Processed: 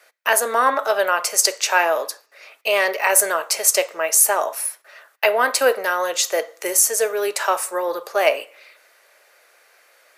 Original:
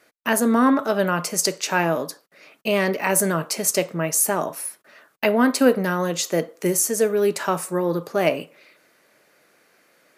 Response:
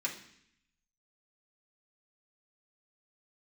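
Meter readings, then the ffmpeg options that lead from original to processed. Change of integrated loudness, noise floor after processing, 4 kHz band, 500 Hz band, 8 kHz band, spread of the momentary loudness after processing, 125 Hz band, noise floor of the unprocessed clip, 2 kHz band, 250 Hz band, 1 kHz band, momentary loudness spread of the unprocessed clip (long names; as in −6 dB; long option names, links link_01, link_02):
+2.5 dB, −57 dBFS, +5.0 dB, +1.0 dB, +5.5 dB, 9 LU, below −30 dB, −61 dBFS, +5.5 dB, −16.0 dB, +4.5 dB, 7 LU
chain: -filter_complex "[0:a]highpass=frequency=510:width=0.5412,highpass=frequency=510:width=1.3066,asplit=2[link_01][link_02];[1:a]atrim=start_sample=2205,lowshelf=frequency=480:gain=-9[link_03];[link_02][link_03]afir=irnorm=-1:irlink=0,volume=-18dB[link_04];[link_01][link_04]amix=inputs=2:normalize=0,volume=4.5dB"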